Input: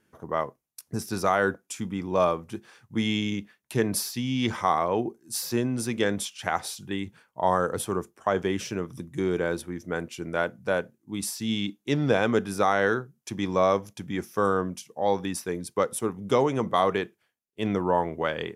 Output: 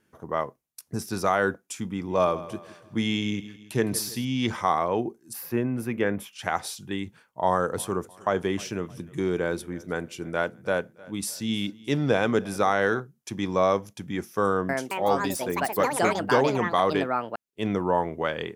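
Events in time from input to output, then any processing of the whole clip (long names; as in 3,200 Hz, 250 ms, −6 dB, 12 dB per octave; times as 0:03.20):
0:01.88–0:04.25: repeating echo 162 ms, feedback 45%, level −16 dB
0:05.33–0:06.33: flat-topped bell 5,600 Hz −15.5 dB
0:07.47–0:13.00: repeating echo 309 ms, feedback 43%, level −22.5 dB
0:14.47–0:18.24: delay with pitch and tempo change per echo 221 ms, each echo +6 semitones, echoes 2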